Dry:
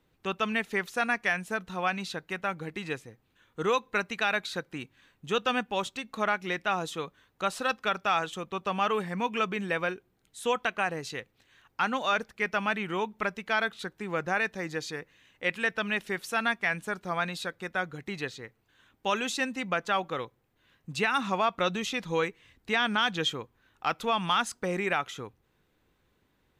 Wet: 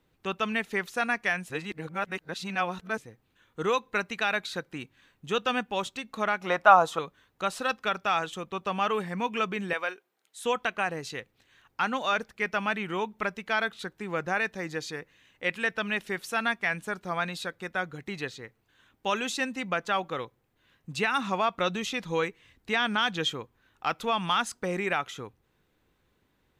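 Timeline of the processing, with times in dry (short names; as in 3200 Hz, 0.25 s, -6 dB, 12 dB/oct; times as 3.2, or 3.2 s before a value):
1.5–2.98 reverse
6.41–6.99 band shelf 870 Hz +13.5 dB
9.73–10.45 HPF 550 Hz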